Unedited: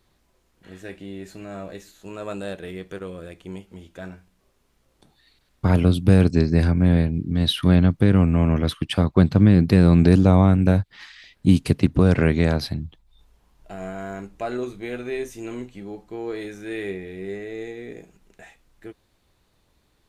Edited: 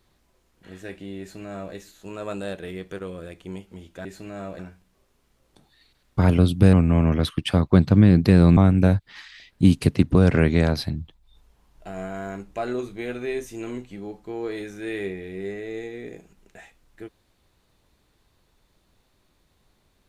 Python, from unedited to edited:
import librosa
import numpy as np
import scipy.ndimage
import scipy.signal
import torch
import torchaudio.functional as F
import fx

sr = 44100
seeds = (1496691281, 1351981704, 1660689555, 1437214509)

y = fx.edit(x, sr, fx.duplicate(start_s=1.2, length_s=0.54, to_s=4.05),
    fx.cut(start_s=6.19, length_s=1.98),
    fx.cut(start_s=10.01, length_s=0.4), tone=tone)